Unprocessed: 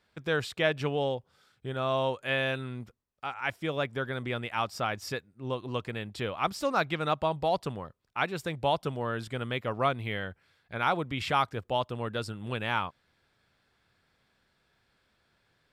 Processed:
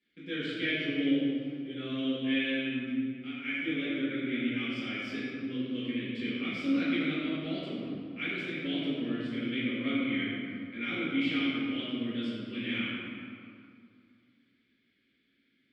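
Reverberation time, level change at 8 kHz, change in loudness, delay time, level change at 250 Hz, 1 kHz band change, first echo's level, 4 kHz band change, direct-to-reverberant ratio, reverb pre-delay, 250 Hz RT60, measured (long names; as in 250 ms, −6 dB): 2.3 s, below −15 dB, −1.0 dB, no echo audible, +8.5 dB, −17.0 dB, no echo audible, +0.5 dB, −13.0 dB, 4 ms, 2.7 s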